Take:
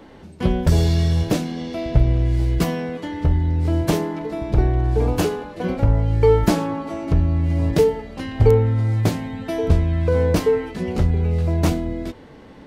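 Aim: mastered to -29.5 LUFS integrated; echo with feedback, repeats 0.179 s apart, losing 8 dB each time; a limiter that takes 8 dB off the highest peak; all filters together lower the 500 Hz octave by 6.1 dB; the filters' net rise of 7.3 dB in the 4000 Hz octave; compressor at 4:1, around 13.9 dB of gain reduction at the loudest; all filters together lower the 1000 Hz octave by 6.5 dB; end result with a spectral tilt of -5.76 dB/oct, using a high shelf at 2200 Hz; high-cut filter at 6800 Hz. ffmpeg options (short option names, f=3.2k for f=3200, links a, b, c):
-af "lowpass=6.8k,equalizer=f=500:t=o:g=-6,equalizer=f=1k:t=o:g=-7.5,highshelf=f=2.2k:g=5,equalizer=f=4k:t=o:g=5.5,acompressor=threshold=-28dB:ratio=4,alimiter=limit=-23dB:level=0:latency=1,aecho=1:1:179|358|537|716|895:0.398|0.159|0.0637|0.0255|0.0102,volume=3dB"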